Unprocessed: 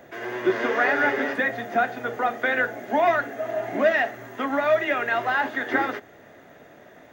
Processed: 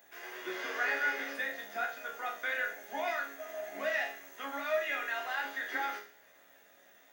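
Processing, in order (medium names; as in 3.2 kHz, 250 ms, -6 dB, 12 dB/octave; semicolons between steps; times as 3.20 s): tilt EQ +4.5 dB/octave; chord resonator C#2 sus4, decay 0.45 s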